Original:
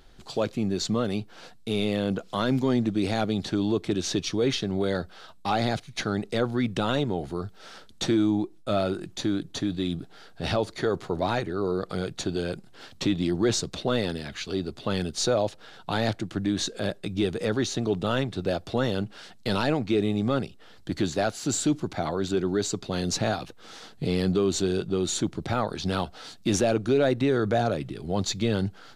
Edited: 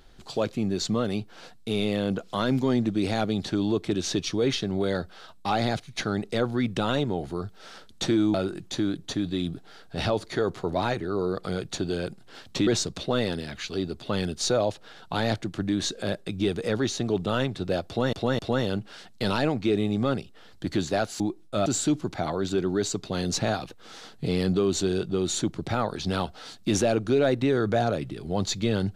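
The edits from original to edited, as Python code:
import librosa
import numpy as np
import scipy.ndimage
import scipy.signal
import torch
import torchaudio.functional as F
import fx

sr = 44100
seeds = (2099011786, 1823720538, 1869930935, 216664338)

y = fx.edit(x, sr, fx.move(start_s=8.34, length_s=0.46, to_s=21.45),
    fx.cut(start_s=13.13, length_s=0.31),
    fx.repeat(start_s=18.64, length_s=0.26, count=3), tone=tone)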